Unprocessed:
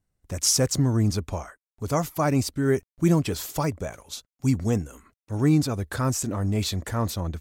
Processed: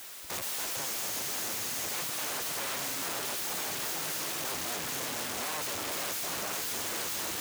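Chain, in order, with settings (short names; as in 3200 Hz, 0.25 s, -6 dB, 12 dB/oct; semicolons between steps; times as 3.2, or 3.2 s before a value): high shelf 2500 Hz -4.5 dB; diffused feedback echo 0.483 s, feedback 55%, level -7 dB; on a send at -16.5 dB: reverb RT60 1.3 s, pre-delay 26 ms; on the sum: compressor 2.5:1, threshold -24 dBFS, peak gain reduction 6.5 dB; in parallel at -10.5 dB: sine folder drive 16 dB, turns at -14.5 dBFS; on the sum: notch 6500 Hz, Q 23; wrapped overs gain 30.5 dB; added noise white -45 dBFS; HPF 360 Hz 6 dB/oct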